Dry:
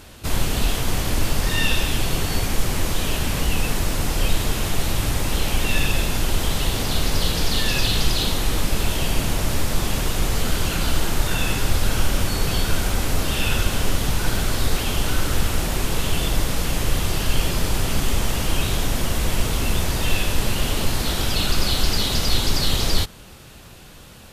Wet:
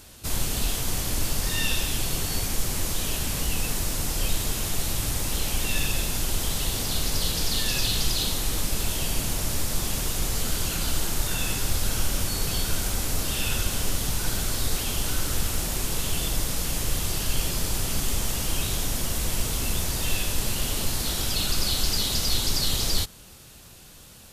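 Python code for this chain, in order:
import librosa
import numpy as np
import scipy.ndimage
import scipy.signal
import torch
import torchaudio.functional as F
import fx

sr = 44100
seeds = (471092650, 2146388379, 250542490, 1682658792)

y = fx.bass_treble(x, sr, bass_db=1, treble_db=9)
y = y * librosa.db_to_amplitude(-7.5)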